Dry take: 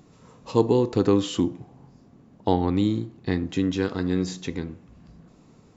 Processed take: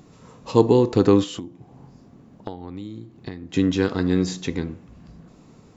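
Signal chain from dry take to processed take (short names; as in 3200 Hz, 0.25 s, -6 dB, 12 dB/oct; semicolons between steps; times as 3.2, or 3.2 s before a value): 1.23–3.54 compressor 10:1, threshold -35 dBFS, peak gain reduction 20.5 dB; gain +4 dB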